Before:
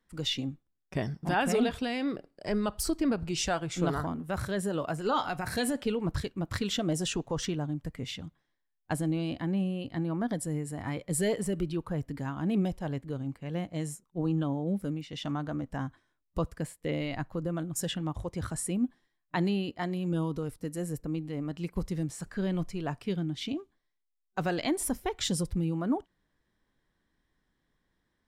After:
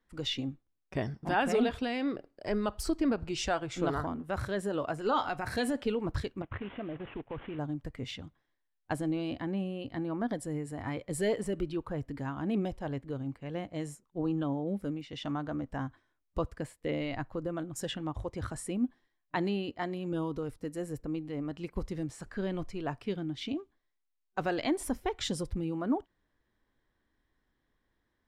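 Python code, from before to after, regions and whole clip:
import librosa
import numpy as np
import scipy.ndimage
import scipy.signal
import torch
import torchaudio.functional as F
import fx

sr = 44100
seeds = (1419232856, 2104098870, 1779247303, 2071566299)

y = fx.chain(x, sr, fx.cvsd(bps=16000),
    fx.level_steps(step_db=12), at=(6.42, 7.59))
y = fx.lowpass(y, sr, hz=3600.0, slope=6)
y = fx.peak_eq(y, sr, hz=170.0, db=-8.0, octaves=0.43)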